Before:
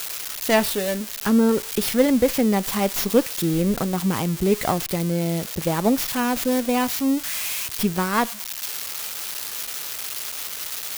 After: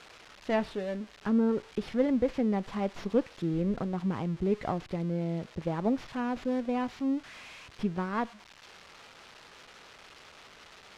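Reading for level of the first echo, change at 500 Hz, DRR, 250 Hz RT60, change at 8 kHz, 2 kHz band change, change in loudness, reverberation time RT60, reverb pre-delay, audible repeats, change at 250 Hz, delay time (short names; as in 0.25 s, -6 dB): none, -9.0 dB, none, none, under -25 dB, -13.0 dB, -9.0 dB, none, none, none, -8.0 dB, none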